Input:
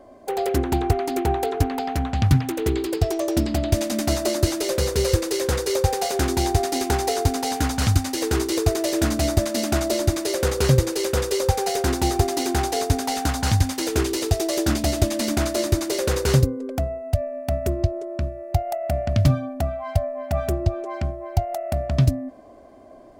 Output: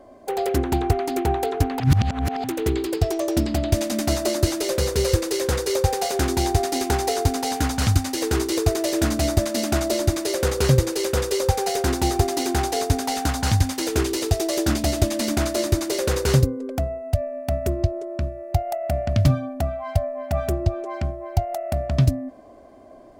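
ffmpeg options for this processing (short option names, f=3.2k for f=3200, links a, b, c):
-filter_complex "[0:a]asplit=3[a][b][c];[a]atrim=end=1.802[d];[b]atrim=start=1.798:end=2.442,asetpts=PTS-STARTPTS,areverse[e];[c]atrim=start=2.438[f];[d][e]acrossfade=d=0.004:c1=hsin:c2=hsin[g];[g][f]acrossfade=d=0.004:c1=hsin:c2=hsin"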